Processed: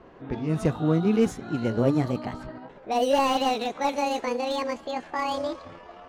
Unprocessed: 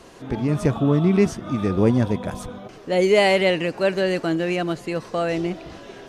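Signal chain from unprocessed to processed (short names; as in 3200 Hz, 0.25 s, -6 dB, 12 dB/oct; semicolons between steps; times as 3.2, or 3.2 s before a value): gliding pitch shift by +10 st starting unshifted; low-pass opened by the level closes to 1600 Hz, open at -17.5 dBFS; slew limiter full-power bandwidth 170 Hz; gain -3.5 dB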